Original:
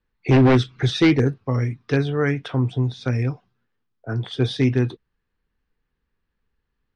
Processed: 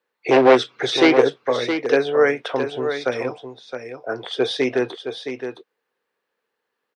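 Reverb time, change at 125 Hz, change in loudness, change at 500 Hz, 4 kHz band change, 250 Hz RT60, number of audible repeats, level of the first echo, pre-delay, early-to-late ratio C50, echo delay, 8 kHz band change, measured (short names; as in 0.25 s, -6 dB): none, -18.5 dB, +1.5 dB, +7.0 dB, +4.5 dB, none, 1, -8.5 dB, none, none, 0.666 s, n/a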